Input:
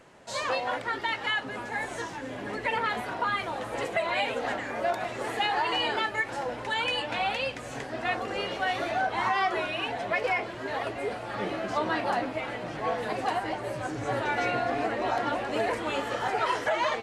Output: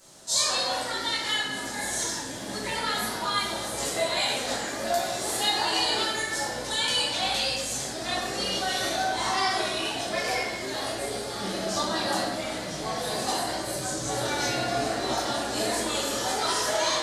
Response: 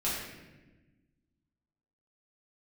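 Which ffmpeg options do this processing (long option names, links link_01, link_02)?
-filter_complex "[0:a]aexciter=amount=10.9:drive=3.1:freq=3700[link_01];[1:a]atrim=start_sample=2205,asetrate=40572,aresample=44100[link_02];[link_01][link_02]afir=irnorm=-1:irlink=0,volume=-8dB"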